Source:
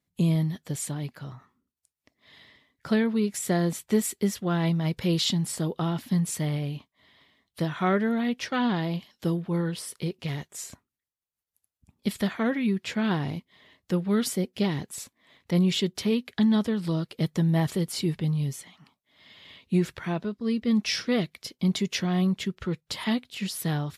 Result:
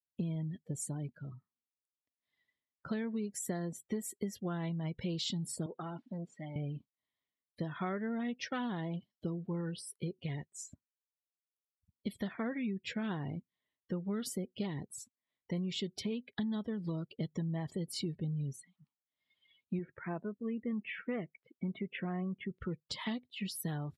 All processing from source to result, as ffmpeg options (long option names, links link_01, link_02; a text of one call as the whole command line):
ffmpeg -i in.wav -filter_complex "[0:a]asettb=1/sr,asplit=3[link_01][link_02][link_03];[link_01]atrim=end=5.664[link_04];[link_02]atrim=start=5.66:end=6.56,asetpts=PTS-STARTPTS,afade=type=in:duration=0.004:curve=qsin,afade=type=out:start_time=0.896:duration=0.004:curve=qsin,aeval=exprs='(tanh(20*val(0)+0.5)-tanh(0.5))/20':channel_layout=same,highpass=230,lowpass=4300[link_05];[link_03]atrim=start=6.556[link_06];[link_04][link_05]acrossfade=duration=0.004:curve1=hsin:curve2=qsin[link_07];[link_07][link_06]acrossfade=duration=0.004:curve1=qsin:curve2=hsin,asettb=1/sr,asplit=3[link_08][link_09][link_10];[link_08]atrim=end=19.794[link_11];[link_09]atrim=start=19.79:end=22.51,asetpts=PTS-STARTPTS,afade=type=in:duration=0.004:curve=qsin,afade=type=out:start_time=2.716:duration=0.004:curve=qsin,lowpass=frequency=2500:width=0.5412,lowpass=frequency=2500:width=1.3066,lowshelf=frequency=130:gain=-10.5[link_12];[link_10]atrim=start=22.506[link_13];[link_11][link_12]acrossfade=duration=0.004:curve1=hsin:curve2=qsin[link_14];[link_14][link_13]acrossfade=duration=0.004:curve1=qsin:curve2=hsin,afftdn=noise_reduction=28:noise_floor=-39,acompressor=threshold=-28dB:ratio=6,volume=-5.5dB" out.wav